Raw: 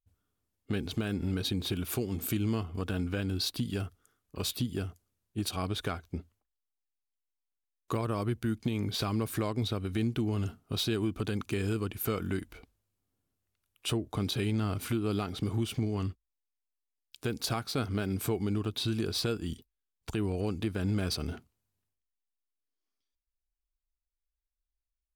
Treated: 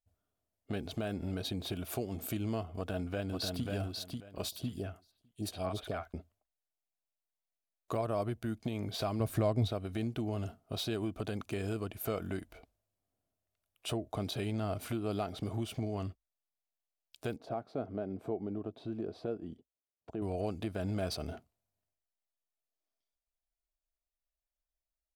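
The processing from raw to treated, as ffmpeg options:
ffmpeg -i in.wav -filter_complex "[0:a]asplit=2[link_01][link_02];[link_02]afade=type=in:start_time=2.78:duration=0.01,afade=type=out:start_time=3.66:duration=0.01,aecho=0:1:540|1080|1620:0.668344|0.133669|0.0267338[link_03];[link_01][link_03]amix=inputs=2:normalize=0,asettb=1/sr,asplit=3[link_04][link_05][link_06];[link_04]atrim=end=4.494[link_07];[link_05]atrim=start=4.49:end=6.14,asetpts=PTS-STARTPTS,afade=type=in:duration=0.004:curve=qsin,afade=type=out:start_time=1.646:duration=0.004:curve=qsin,acrossover=split=730|3300[link_08][link_09][link_10];[link_08]adelay=30[link_11];[link_09]adelay=70[link_12];[link_11][link_12][link_10]amix=inputs=3:normalize=0,atrim=end_sample=72765[link_13];[link_06]atrim=start=6.136[link_14];[link_07][link_13]acrossfade=duration=0.004:curve1=hsin:curve2=qsin[link_15];[link_15][link_14]acrossfade=duration=0.004:curve1=qsin:curve2=hsin,asettb=1/sr,asplit=3[link_16][link_17][link_18];[link_16]atrim=end=9.204[link_19];[link_17]atrim=start=9.2:end=9.7,asetpts=PTS-STARTPTS,afade=type=in:duration=0.004:curve=qsin,afade=type=out:start_time=0.496:duration=0.004:curve=qsin,lowshelf=frequency=200:gain=11.5[link_20];[link_18]atrim=start=9.696[link_21];[link_19][link_20]acrossfade=duration=0.004:curve1=hsin:curve2=qsin[link_22];[link_22][link_21]acrossfade=duration=0.004:curve1=qsin:curve2=hsin,asettb=1/sr,asplit=3[link_23][link_24][link_25];[link_23]atrim=end=17.364[link_26];[link_24]atrim=start=17.36:end=20.22,asetpts=PTS-STARTPTS,afade=type=in:duration=0.004:curve=qsin,afade=type=out:start_time=2.856:duration=0.004:curve=qsin,bandpass=frequency=340:width_type=q:width=0.76[link_27];[link_25]atrim=start=20.216[link_28];[link_26][link_27]acrossfade=duration=0.004:curve1=hsin:curve2=qsin[link_29];[link_29][link_28]acrossfade=duration=0.004:curve1=qsin:curve2=hsin,equalizer=frequency=650:width_type=o:width=0.5:gain=14.5,volume=-6dB" out.wav

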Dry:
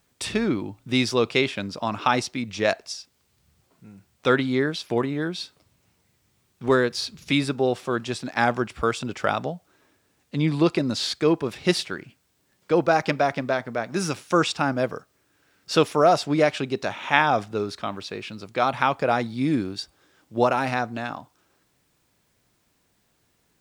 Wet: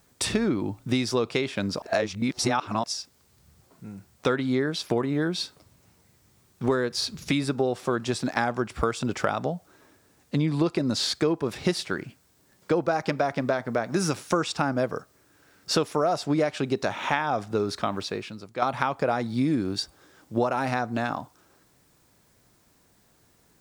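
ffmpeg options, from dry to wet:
ffmpeg -i in.wav -filter_complex "[0:a]asplit=4[link_01][link_02][link_03][link_04];[link_01]atrim=end=1.822[link_05];[link_02]atrim=start=1.818:end=2.842,asetpts=PTS-STARTPTS,areverse[link_06];[link_03]atrim=start=2.838:end=18.62,asetpts=PTS-STARTPTS,afade=type=out:start_time=15.152:duration=0.63:curve=qua:silence=0.266073[link_07];[link_04]atrim=start=18.62,asetpts=PTS-STARTPTS,afade=type=in:duration=0.004:curve=hsin:silence=0.266073[link_08];[link_05][link_06]acrossfade=duration=0.004:curve1=hsin:curve2=hsin[link_09];[link_07][link_08]concat=n=2:v=0:a=1[link_10];[link_09][link_10]acrossfade=duration=0.004:curve1=hsin:curve2=hsin,acompressor=threshold=-27dB:ratio=6,equalizer=frequency=2800:width_type=o:width=1.1:gain=-5,volume=6dB" out.wav

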